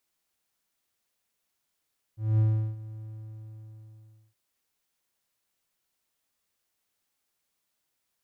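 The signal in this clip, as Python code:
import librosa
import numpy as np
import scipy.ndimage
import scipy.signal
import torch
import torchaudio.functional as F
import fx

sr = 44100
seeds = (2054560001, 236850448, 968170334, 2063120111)

y = fx.adsr_tone(sr, wave='triangle', hz=109.0, attack_ms=217.0, decay_ms=369.0, sustain_db=-19.0, held_s=0.85, release_ms=1320.0, level_db=-16.5)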